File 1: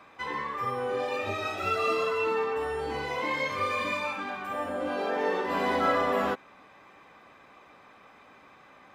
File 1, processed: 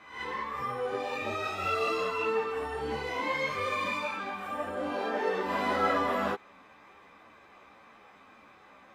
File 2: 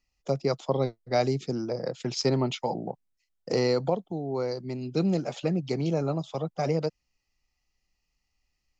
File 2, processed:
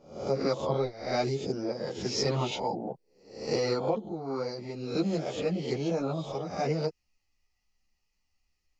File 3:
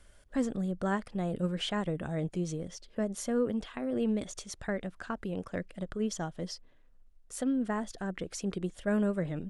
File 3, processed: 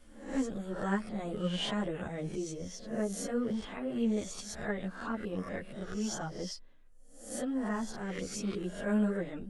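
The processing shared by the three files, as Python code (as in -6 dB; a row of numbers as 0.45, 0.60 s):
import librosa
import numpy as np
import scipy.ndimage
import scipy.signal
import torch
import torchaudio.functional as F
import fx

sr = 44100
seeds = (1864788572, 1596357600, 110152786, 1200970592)

y = fx.spec_swells(x, sr, rise_s=0.56)
y = fx.ensemble(y, sr)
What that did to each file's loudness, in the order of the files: -2.0, -2.5, -1.5 LU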